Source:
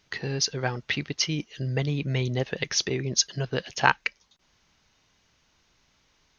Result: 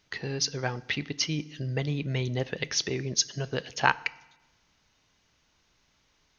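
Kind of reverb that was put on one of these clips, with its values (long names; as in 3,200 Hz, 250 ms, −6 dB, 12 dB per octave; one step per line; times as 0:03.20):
feedback delay network reverb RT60 1 s, low-frequency decay 1.25×, high-frequency decay 0.9×, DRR 18 dB
level −2.5 dB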